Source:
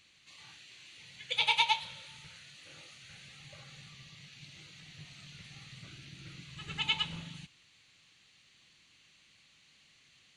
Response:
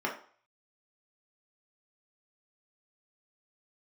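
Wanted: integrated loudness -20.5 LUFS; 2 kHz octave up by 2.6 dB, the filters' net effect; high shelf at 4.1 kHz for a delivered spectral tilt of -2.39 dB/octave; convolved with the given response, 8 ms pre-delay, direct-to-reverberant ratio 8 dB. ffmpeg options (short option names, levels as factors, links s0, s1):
-filter_complex "[0:a]equalizer=f=2000:t=o:g=5.5,highshelf=f=4100:g=-7,asplit=2[s0][s1];[1:a]atrim=start_sample=2205,adelay=8[s2];[s1][s2]afir=irnorm=-1:irlink=0,volume=0.158[s3];[s0][s3]amix=inputs=2:normalize=0,volume=3.35"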